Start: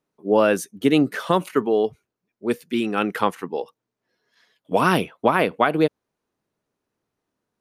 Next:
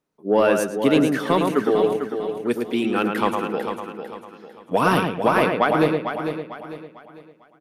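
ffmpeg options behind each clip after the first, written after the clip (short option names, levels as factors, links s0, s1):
-filter_complex "[0:a]asplit=2[s0][s1];[s1]adelay=110,lowpass=f=2300:p=1,volume=0.596,asplit=2[s2][s3];[s3]adelay=110,lowpass=f=2300:p=1,volume=0.28,asplit=2[s4][s5];[s5]adelay=110,lowpass=f=2300:p=1,volume=0.28,asplit=2[s6][s7];[s7]adelay=110,lowpass=f=2300:p=1,volume=0.28[s8];[s2][s4][s6][s8]amix=inputs=4:normalize=0[s9];[s0][s9]amix=inputs=2:normalize=0,asoftclip=type=tanh:threshold=0.531,asplit=2[s10][s11];[s11]aecho=0:1:449|898|1347|1796:0.398|0.143|0.0516|0.0186[s12];[s10][s12]amix=inputs=2:normalize=0"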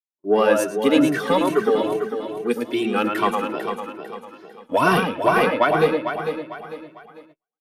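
-filter_complex "[0:a]agate=range=0.0112:threshold=0.00562:ratio=16:detection=peak,lowshelf=f=170:g=-7,asplit=2[s0][s1];[s1]adelay=2.1,afreqshift=2.4[s2];[s0][s2]amix=inputs=2:normalize=1,volume=1.68"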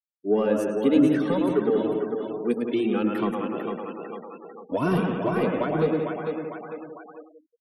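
-filter_complex "[0:a]asplit=2[s0][s1];[s1]adelay=178,lowpass=f=3600:p=1,volume=0.398,asplit=2[s2][s3];[s3]adelay=178,lowpass=f=3600:p=1,volume=0.25,asplit=2[s4][s5];[s5]adelay=178,lowpass=f=3600:p=1,volume=0.25[s6];[s0][s2][s4][s6]amix=inputs=4:normalize=0,afftfilt=real='re*gte(hypot(re,im),0.0126)':imag='im*gte(hypot(re,im),0.0126)':win_size=1024:overlap=0.75,acrossover=split=420[s7][s8];[s8]acompressor=threshold=0.00891:ratio=2[s9];[s7][s9]amix=inputs=2:normalize=0"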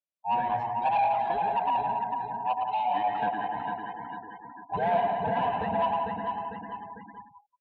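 -af "afftfilt=real='real(if(lt(b,1008),b+24*(1-2*mod(floor(b/24),2)),b),0)':imag='imag(if(lt(b,1008),b+24*(1-2*mod(floor(b/24),2)),b),0)':win_size=2048:overlap=0.75,asoftclip=type=tanh:threshold=0.119,highpass=180,equalizer=f=200:t=q:w=4:g=4,equalizer=f=360:t=q:w=4:g=-8,equalizer=f=580:t=q:w=4:g=9,equalizer=f=850:t=q:w=4:g=-3,equalizer=f=1300:t=q:w=4:g=-6,equalizer=f=2000:t=q:w=4:g=-9,lowpass=f=3100:w=0.5412,lowpass=f=3100:w=1.3066"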